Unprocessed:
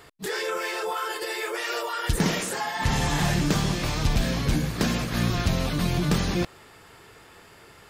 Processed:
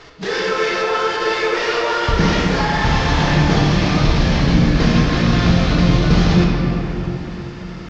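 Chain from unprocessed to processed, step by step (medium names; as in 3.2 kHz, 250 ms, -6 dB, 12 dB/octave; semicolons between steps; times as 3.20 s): CVSD coder 32 kbps; in parallel at -1.5 dB: peak limiter -22.5 dBFS, peak gain reduction 8.5 dB; on the sum: tempo 1×; simulated room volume 200 m³, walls hard, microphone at 0.6 m; trim +2 dB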